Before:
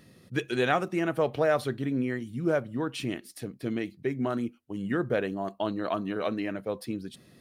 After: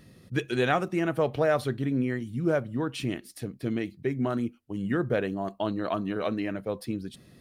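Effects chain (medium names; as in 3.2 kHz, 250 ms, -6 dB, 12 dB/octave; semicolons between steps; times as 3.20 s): bass shelf 110 Hz +9 dB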